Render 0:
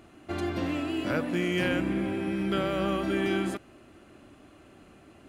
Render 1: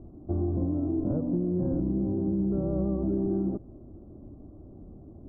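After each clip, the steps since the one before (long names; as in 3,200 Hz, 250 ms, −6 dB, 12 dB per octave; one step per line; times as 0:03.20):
Bessel low-pass filter 560 Hz, order 8
spectral tilt −3.5 dB per octave
downward compressor, threshold −24 dBFS, peak gain reduction 6.5 dB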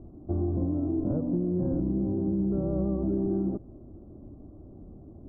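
no processing that can be heard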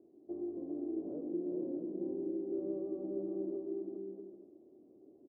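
four-pole ladder band-pass 430 Hz, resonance 55%
on a send: bouncing-ball delay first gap 400 ms, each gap 0.6×, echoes 5
on the sum: level −2.5 dB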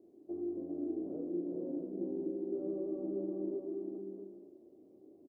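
double-tracking delay 35 ms −4 dB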